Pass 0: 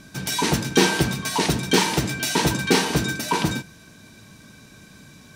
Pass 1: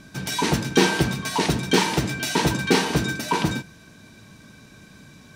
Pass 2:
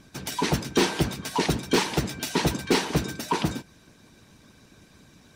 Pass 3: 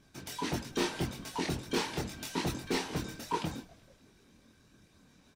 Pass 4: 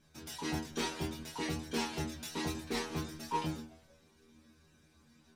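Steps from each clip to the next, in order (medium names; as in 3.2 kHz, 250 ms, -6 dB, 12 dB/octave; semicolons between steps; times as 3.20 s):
treble shelf 5.6 kHz -5.5 dB
harmonic-percussive split harmonic -13 dB; overload inside the chain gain 14 dB
chorus voices 4, 0.71 Hz, delay 24 ms, depth 2.1 ms; frequency-shifting echo 188 ms, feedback 63%, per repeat -140 Hz, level -23.5 dB; trim -6.5 dB
inharmonic resonator 77 Hz, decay 0.39 s, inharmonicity 0.002; trim +7 dB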